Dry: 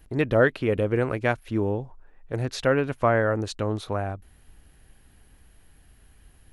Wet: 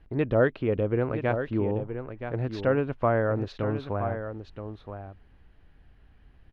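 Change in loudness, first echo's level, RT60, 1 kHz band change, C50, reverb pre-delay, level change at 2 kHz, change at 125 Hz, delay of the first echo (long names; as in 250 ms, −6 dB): −2.5 dB, −9.0 dB, no reverb audible, −3.0 dB, no reverb audible, no reverb audible, −6.5 dB, −1.0 dB, 973 ms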